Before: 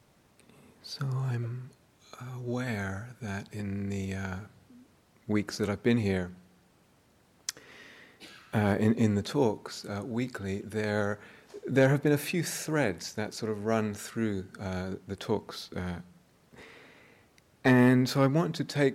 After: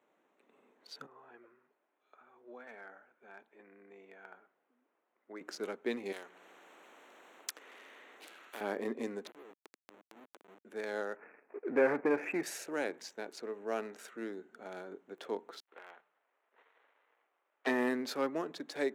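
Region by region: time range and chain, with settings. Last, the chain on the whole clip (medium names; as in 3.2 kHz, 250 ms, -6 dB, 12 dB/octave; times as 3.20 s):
1.06–5.41 s: high-pass 840 Hz 6 dB/octave + tape spacing loss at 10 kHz 27 dB
6.12–8.61 s: high-pass 410 Hz 6 dB/octave + upward compressor, threshold -47 dBFS + spectrum-flattening compressor 2:1
9.27–10.65 s: Schmitt trigger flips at -31 dBFS + compression 12:1, threshold -43 dBFS
11.16–12.43 s: waveshaping leveller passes 2 + Chebyshev low-pass 2.5 kHz, order 6
15.60–17.67 s: dead-time distortion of 0.23 ms + band-pass 770–3200 Hz
whole clip: local Wiener filter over 9 samples; high-pass 290 Hz 24 dB/octave; trim -6.5 dB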